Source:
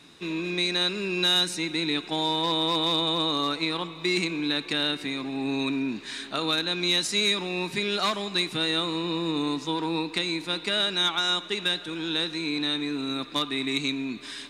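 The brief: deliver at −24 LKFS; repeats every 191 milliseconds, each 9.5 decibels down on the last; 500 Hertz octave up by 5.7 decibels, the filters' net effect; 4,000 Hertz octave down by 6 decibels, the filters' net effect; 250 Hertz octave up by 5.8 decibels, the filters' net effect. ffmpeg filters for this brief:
ffmpeg -i in.wav -af "equalizer=frequency=250:width_type=o:gain=5.5,equalizer=frequency=500:width_type=o:gain=5.5,equalizer=frequency=4000:width_type=o:gain=-6.5,aecho=1:1:191|382|573|764:0.335|0.111|0.0365|0.012,volume=1dB" out.wav

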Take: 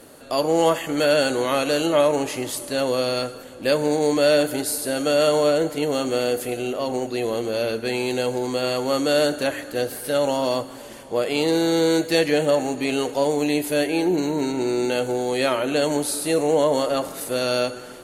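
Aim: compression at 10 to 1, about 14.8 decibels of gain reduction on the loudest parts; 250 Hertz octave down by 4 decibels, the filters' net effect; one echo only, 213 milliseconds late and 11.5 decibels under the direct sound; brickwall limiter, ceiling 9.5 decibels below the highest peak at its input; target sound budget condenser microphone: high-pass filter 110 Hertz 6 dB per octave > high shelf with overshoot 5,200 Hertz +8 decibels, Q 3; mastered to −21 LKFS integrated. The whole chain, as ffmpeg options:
ffmpeg -i in.wav -af "equalizer=frequency=250:width_type=o:gain=-4.5,acompressor=threshold=-30dB:ratio=10,alimiter=level_in=2dB:limit=-24dB:level=0:latency=1,volume=-2dB,highpass=frequency=110:poles=1,highshelf=frequency=5200:width_type=q:width=3:gain=8,aecho=1:1:213:0.266,volume=11dB" out.wav

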